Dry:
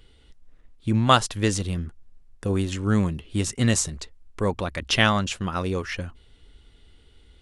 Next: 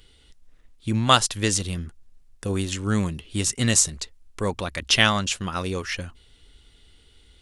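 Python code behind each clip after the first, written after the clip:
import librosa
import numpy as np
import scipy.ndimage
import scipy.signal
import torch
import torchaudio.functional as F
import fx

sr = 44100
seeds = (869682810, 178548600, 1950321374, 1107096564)

y = fx.high_shelf(x, sr, hz=2500.0, db=9.5)
y = F.gain(torch.from_numpy(y), -2.0).numpy()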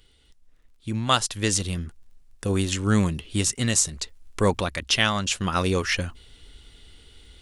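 y = fx.rider(x, sr, range_db=5, speed_s=0.5)
y = fx.dmg_crackle(y, sr, seeds[0], per_s=22.0, level_db=-53.0)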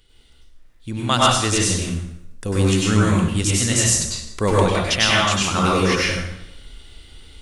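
y = fx.rev_plate(x, sr, seeds[1], rt60_s=0.83, hf_ratio=0.8, predelay_ms=85, drr_db=-5.5)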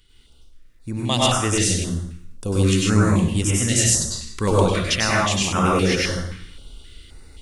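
y = fx.filter_held_notch(x, sr, hz=3.8, low_hz=620.0, high_hz=4200.0)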